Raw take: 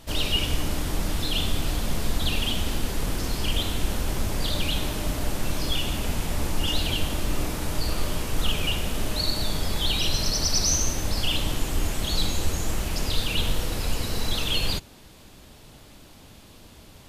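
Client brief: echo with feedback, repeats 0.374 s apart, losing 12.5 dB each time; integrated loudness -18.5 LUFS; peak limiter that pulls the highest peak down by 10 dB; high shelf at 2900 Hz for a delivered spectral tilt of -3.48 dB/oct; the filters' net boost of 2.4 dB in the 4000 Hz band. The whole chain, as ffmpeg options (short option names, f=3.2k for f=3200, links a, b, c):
-af "highshelf=f=2.9k:g=-7.5,equalizer=f=4k:t=o:g=9,alimiter=limit=-18.5dB:level=0:latency=1,aecho=1:1:374|748|1122:0.237|0.0569|0.0137,volume=10.5dB"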